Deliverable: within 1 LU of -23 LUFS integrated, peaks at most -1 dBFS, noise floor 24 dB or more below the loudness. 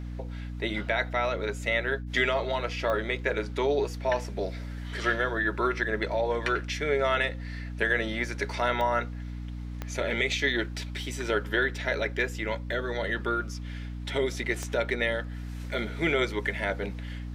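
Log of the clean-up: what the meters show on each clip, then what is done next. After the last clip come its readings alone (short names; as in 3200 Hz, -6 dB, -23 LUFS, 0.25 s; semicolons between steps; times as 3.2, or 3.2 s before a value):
clicks 4; hum 60 Hz; harmonics up to 300 Hz; hum level -34 dBFS; loudness -29.0 LUFS; peak -12.0 dBFS; loudness target -23.0 LUFS
-> de-click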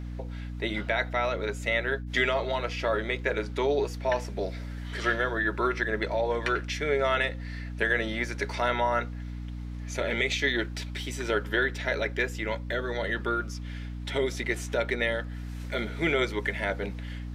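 clicks 0; hum 60 Hz; harmonics up to 300 Hz; hum level -34 dBFS
-> de-hum 60 Hz, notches 5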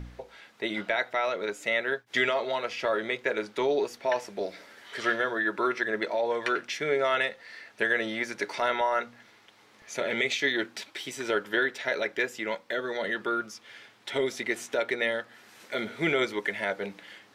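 hum none; loudness -29.0 LUFS; peak -12.0 dBFS; loudness target -23.0 LUFS
-> gain +6 dB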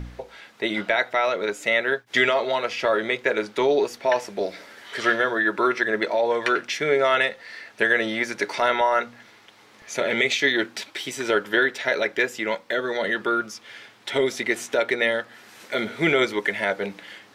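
loudness -23.0 LUFS; peak -6.0 dBFS; noise floor -53 dBFS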